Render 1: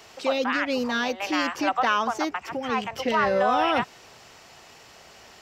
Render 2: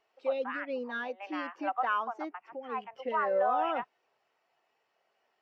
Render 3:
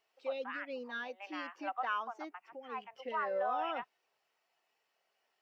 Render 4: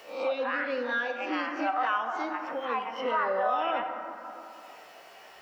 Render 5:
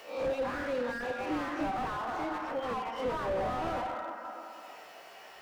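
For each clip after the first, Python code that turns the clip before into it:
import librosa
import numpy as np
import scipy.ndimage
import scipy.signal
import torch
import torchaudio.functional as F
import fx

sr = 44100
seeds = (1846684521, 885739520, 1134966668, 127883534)

y1 = scipy.signal.sosfilt(scipy.signal.butter(2, 96.0, 'highpass', fs=sr, output='sos'), x)
y1 = fx.bass_treble(y1, sr, bass_db=-9, treble_db=-8)
y1 = fx.spectral_expand(y1, sr, expansion=1.5)
y1 = F.gain(torch.from_numpy(y1), -7.5).numpy()
y2 = fx.high_shelf(y1, sr, hz=2400.0, db=10.5)
y2 = F.gain(torch.from_numpy(y2), -7.5).numpy()
y3 = fx.spec_swells(y2, sr, rise_s=0.3)
y3 = fx.rev_plate(y3, sr, seeds[0], rt60_s=1.5, hf_ratio=0.5, predelay_ms=0, drr_db=5.0)
y3 = fx.band_squash(y3, sr, depth_pct=70)
y3 = F.gain(torch.from_numpy(y3), 7.0).numpy()
y4 = fx.slew_limit(y3, sr, full_power_hz=21.0)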